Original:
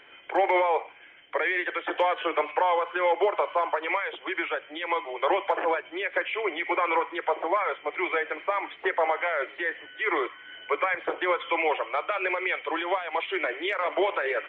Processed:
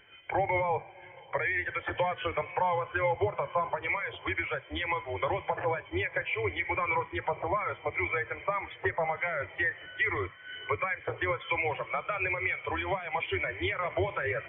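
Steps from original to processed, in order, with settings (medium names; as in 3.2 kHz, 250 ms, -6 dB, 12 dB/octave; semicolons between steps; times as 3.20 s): octave divider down 2 oct, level +3 dB; dynamic bell 2.4 kHz, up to +5 dB, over -42 dBFS, Q 0.96; compression 4:1, threshold -34 dBFS, peak gain reduction 14 dB; echo that smears into a reverb 525 ms, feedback 52%, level -15 dB; spectral contrast expander 1.5:1; trim +3 dB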